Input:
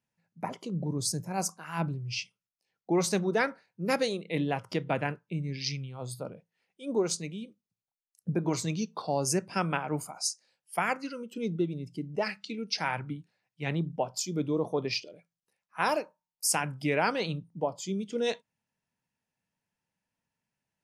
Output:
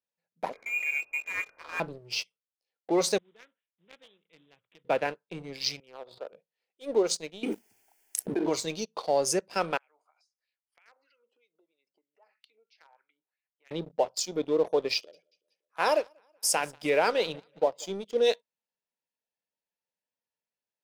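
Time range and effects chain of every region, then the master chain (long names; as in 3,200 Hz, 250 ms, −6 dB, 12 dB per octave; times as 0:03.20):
0:00.53–0:01.80: spike at every zero crossing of −27 dBFS + parametric band 740 Hz −7.5 dB 0.55 octaves + voice inversion scrambler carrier 2,600 Hz
0:03.18–0:04.85: one scale factor per block 5 bits + guitar amp tone stack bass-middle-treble 6-0-2 + bad sample-rate conversion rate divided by 6×, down none, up filtered
0:05.80–0:06.33: band-pass filter 500–2,700 Hz + high-frequency loss of the air 380 metres + background raised ahead of every attack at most 52 dB per second
0:07.43–0:08.46: phaser with its sweep stopped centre 790 Hz, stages 8 + envelope flattener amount 100%
0:09.77–0:13.71: high-pass filter 280 Hz + downward compressor 5 to 1, threshold −44 dBFS + LFO wah 3.1 Hz 750–2,500 Hz, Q 2.7
0:14.94–0:17.97: notch filter 4,300 Hz, Q 9.6 + repeating echo 187 ms, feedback 50%, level −23.5 dB
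whole clip: low-shelf EQ 310 Hz −8.5 dB; leveller curve on the samples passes 2; octave-band graphic EQ 125/500/4,000 Hz −5/+10/+6 dB; level −8 dB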